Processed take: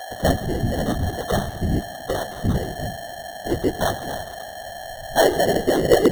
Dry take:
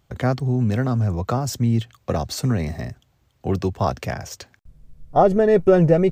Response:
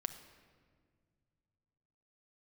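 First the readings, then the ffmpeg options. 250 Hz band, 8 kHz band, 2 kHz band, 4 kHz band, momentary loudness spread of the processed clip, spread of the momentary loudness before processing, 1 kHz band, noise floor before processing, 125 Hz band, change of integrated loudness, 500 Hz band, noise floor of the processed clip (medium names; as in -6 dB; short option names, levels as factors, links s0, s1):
-2.5 dB, +3.0 dB, +6.0 dB, +7.0 dB, 16 LU, 16 LU, 0.0 dB, -64 dBFS, -5.5 dB, -2.0 dB, -1.0 dB, -36 dBFS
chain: -filter_complex "[0:a]equalizer=f=630:t=o:w=2.3:g=12,asplit=2[s0][s1];[1:a]atrim=start_sample=2205,asetrate=40572,aresample=44100,adelay=8[s2];[s1][s2]afir=irnorm=-1:irlink=0,volume=0.794[s3];[s0][s3]amix=inputs=2:normalize=0,flanger=delay=2.5:depth=8.1:regen=7:speed=0.94:shape=sinusoidal,aeval=exprs='val(0)+0.0891*sin(2*PI*5600*n/s)':c=same,afftfilt=real='hypot(re,im)*cos(2*PI*random(0))':imag='hypot(re,im)*sin(2*PI*random(1))':win_size=512:overlap=0.75,lowshelf=f=160:g=5.5,deesser=0.6,acrossover=split=520[s4][s5];[s5]acrusher=samples=18:mix=1:aa=0.000001[s6];[s4][s6]amix=inputs=2:normalize=0,volume=0.708"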